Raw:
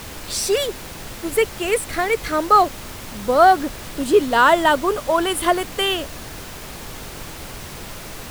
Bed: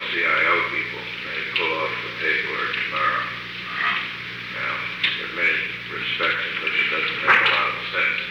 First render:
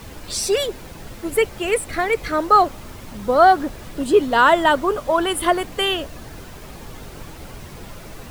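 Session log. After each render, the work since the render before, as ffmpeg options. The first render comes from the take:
-af "afftdn=nr=8:nf=-35"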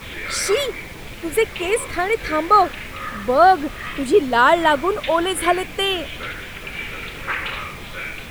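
-filter_complex "[1:a]volume=-9.5dB[a];[0:a][a]amix=inputs=2:normalize=0"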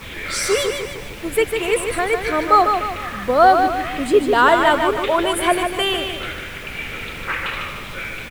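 -af "aecho=1:1:150|300|450|600|750:0.501|0.226|0.101|0.0457|0.0206"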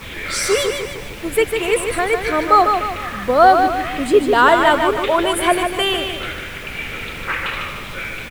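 -af "volume=1.5dB,alimiter=limit=-1dB:level=0:latency=1"

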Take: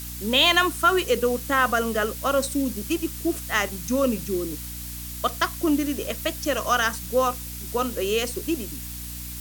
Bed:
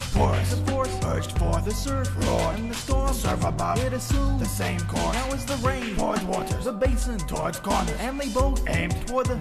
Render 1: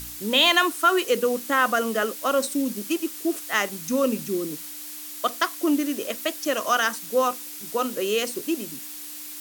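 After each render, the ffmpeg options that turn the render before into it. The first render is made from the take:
-af "bandreject=f=60:t=h:w=4,bandreject=f=120:t=h:w=4,bandreject=f=180:t=h:w=4,bandreject=f=240:t=h:w=4"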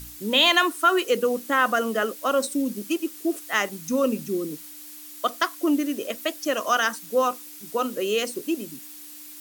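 -af "afftdn=nr=6:nf=-38"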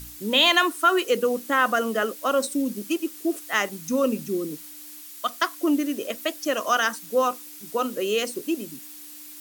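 -filter_complex "[0:a]asettb=1/sr,asplit=3[a][b][c];[a]atrim=end=5.014[d];[b]atrim=start=5.01:end=5.42,asetpts=PTS-STARTPTS,afade=t=in:d=0.004:c=qsin,afade=t=out:st=0.406:d=0.004:c=qsin,equalizer=f=410:t=o:w=1.1:g=-13[e];[c]atrim=start=5.416[f];[d][e]acrossfade=d=0.004:c1=hsin:c2=qsin[g];[g][f]acrossfade=d=0.004:c1=qsin:c2=hsin"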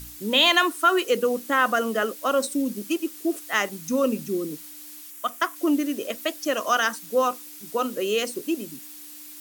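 -filter_complex "[0:a]asettb=1/sr,asplit=3[a][b][c];[a]atrim=end=5.104[d];[b]atrim=start=5.1:end=5.56,asetpts=PTS-STARTPTS,afade=t=in:d=0.004:c=qsin,afade=t=out:st=0.456:d=0.004:c=qsin,equalizer=f=4.3k:t=o:w=0.67:g=-10[e];[c]atrim=start=5.556[f];[d][e]acrossfade=d=0.004:c1=hsin:c2=qsin[g];[g][f]acrossfade=d=0.004:c1=qsin:c2=hsin"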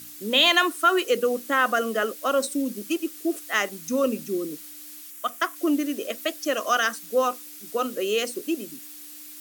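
-af "highpass=210,bandreject=f=930:w=5.5"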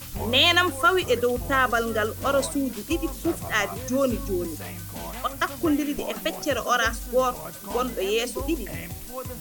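-filter_complex "[1:a]volume=-11dB[a];[0:a][a]amix=inputs=2:normalize=0"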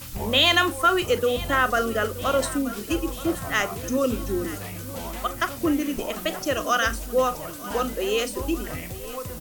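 -filter_complex "[0:a]asplit=2[a][b];[b]adelay=39,volume=-14dB[c];[a][c]amix=inputs=2:normalize=0,aecho=1:1:926|1852|2778|3704|4630:0.141|0.0791|0.0443|0.0248|0.0139"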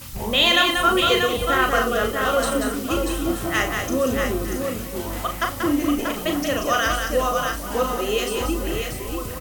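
-filter_complex "[0:a]asplit=2[a][b];[b]adelay=38,volume=-5.5dB[c];[a][c]amix=inputs=2:normalize=0,aecho=1:1:186|637:0.562|0.531"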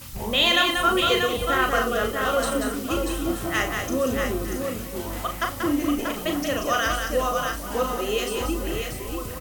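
-af "volume=-2.5dB"

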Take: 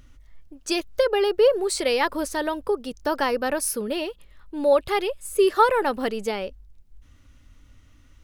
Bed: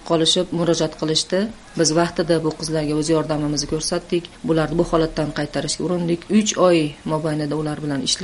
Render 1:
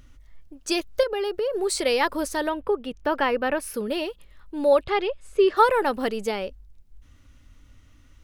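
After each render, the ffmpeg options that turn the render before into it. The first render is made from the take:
-filter_complex "[0:a]asettb=1/sr,asplit=3[a][b][c];[a]atrim=end=1.034[d];[b]atrim=start=1.03:end=1.55,asetpts=PTS-STARTPTS,afade=t=in:d=0.004:c=qsin,afade=t=out:st=0.516:d=0.004:c=qsin,acompressor=threshold=-23dB:ratio=6:attack=3.2:release=140:knee=1:detection=peak[e];[c]atrim=start=1.546[f];[d][e]acrossfade=d=0.004:c1=hsin:c2=qsin[g];[g][f]acrossfade=d=0.004:c1=qsin:c2=hsin,asettb=1/sr,asplit=3[h][i][j];[h]atrim=end=2.494[k];[i]atrim=start=2.49:end=3.74,asetpts=PTS-STARTPTS,afade=t=in:d=0.004:c=qsin,afade=t=out:st=1.246:d=0.004:c=qsin,highshelf=f=3.8k:t=q:w=1.5:g=-9.5[l];[j]atrim=start=3.736[m];[k][l]acrossfade=d=0.004:c1=hsin:c2=qsin[n];[n][m]acrossfade=d=0.004:c1=qsin:c2=hsin,asplit=3[o][p][q];[o]afade=t=out:st=4.83:d=0.02[r];[p]lowpass=3.9k,afade=t=in:st=4.83:d=0.02,afade=t=out:st=5.56:d=0.02[s];[q]afade=t=in:st=5.56:d=0.02[t];[r][s][t]amix=inputs=3:normalize=0"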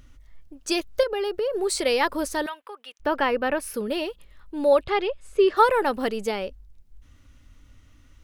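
-filter_complex "[0:a]asettb=1/sr,asplit=3[a][b][c];[a]atrim=end=2.464[d];[b]atrim=start=2.46:end=3,asetpts=PTS-STARTPTS,afade=t=in:d=0.004:c=qsin,afade=t=out:st=0.536:d=0.004:c=qsin,highpass=1.3k[e];[c]atrim=start=2.996[f];[d][e]acrossfade=d=0.004:c1=hsin:c2=qsin[g];[g][f]acrossfade=d=0.004:c1=qsin:c2=hsin"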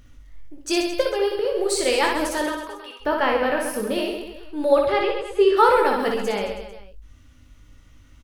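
-filter_complex "[0:a]asplit=2[a][b];[b]adelay=20,volume=-7dB[c];[a][c]amix=inputs=2:normalize=0,aecho=1:1:60|132|218.4|322.1|446.5:0.631|0.398|0.251|0.158|0.1"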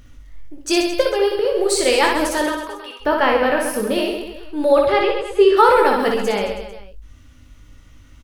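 -af "volume=4.5dB,alimiter=limit=-3dB:level=0:latency=1"

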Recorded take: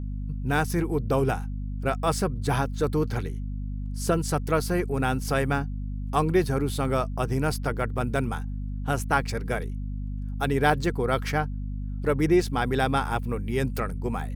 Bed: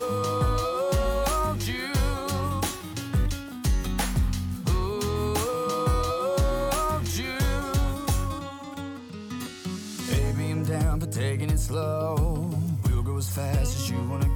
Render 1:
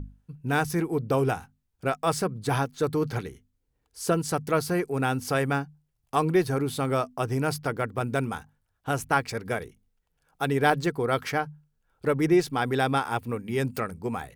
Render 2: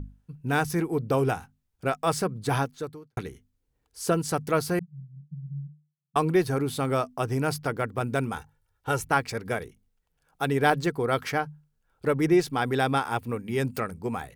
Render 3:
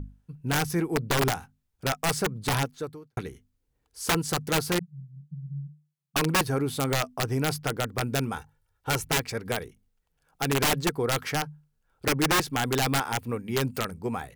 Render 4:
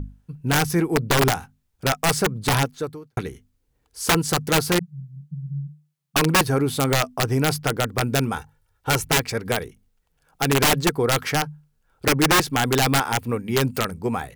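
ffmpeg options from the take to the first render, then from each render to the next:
-af "bandreject=f=50:t=h:w=6,bandreject=f=100:t=h:w=6,bandreject=f=150:t=h:w=6,bandreject=f=200:t=h:w=6,bandreject=f=250:t=h:w=6"
-filter_complex "[0:a]asettb=1/sr,asplit=3[a][b][c];[a]atrim=end=4.794[d];[b]atrim=start=4.79:end=6.16,asetpts=PTS-STARTPTS,afade=t=in:d=0.004:c=qsin,afade=t=out:st=1.366:d=0.004:c=qsin,asuperpass=centerf=160:order=8:qfactor=3.6[e];[c]atrim=start=6.156[f];[d][e]acrossfade=d=0.004:c1=hsin:c2=qsin[g];[g][f]acrossfade=d=0.004:c1=qsin:c2=hsin,asettb=1/sr,asplit=3[h][i][j];[h]atrim=end=8.374[k];[i]atrim=start=8.37:end=9.07,asetpts=PTS-STARTPTS,afade=t=in:d=0.004:c=qsin,afade=t=out:st=0.696:d=0.004:c=qsin,aecho=1:1:2.2:0.6,atrim=end_sample=30870[l];[j]atrim=start=9.066[m];[k][l]acrossfade=d=0.004:c1=hsin:c2=qsin[n];[n][m]acrossfade=d=0.004:c1=qsin:c2=hsin,asplit=2[o][p];[o]atrim=end=3.17,asetpts=PTS-STARTPTS,afade=t=out:st=2.64:d=0.53:c=qua[q];[p]atrim=start=3.17,asetpts=PTS-STARTPTS,afade=t=in:d=0.004:c=hsin[r];[q][r]concat=n=2:v=0:a=1"
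-af "aeval=exprs='(mod(7.5*val(0)+1,2)-1)/7.5':c=same"
-af "volume=6dB"

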